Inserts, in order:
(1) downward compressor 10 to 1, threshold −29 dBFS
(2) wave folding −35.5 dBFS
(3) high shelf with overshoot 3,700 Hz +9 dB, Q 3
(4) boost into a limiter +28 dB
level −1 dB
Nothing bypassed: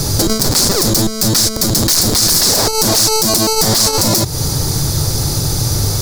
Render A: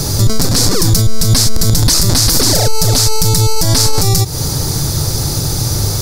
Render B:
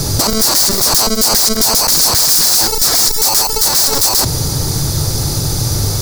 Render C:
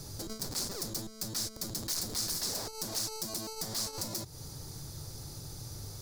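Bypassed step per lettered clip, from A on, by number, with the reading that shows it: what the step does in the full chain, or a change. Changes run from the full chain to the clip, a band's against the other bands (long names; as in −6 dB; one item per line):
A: 2, change in crest factor −3.5 dB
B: 1, average gain reduction 8.5 dB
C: 4, change in crest factor +6.0 dB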